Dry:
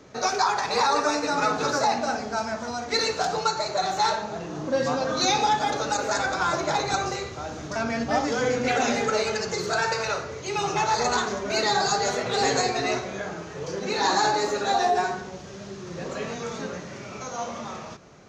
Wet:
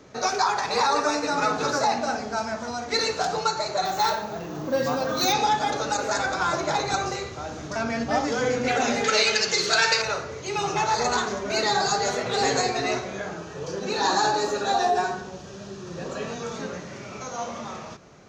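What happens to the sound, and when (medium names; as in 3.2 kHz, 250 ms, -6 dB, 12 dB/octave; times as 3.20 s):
3.85–5.33 s: careless resampling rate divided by 2×, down none, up hold
9.04–10.02 s: frequency weighting D
13.36–16.56 s: band-stop 2.1 kHz, Q 6.8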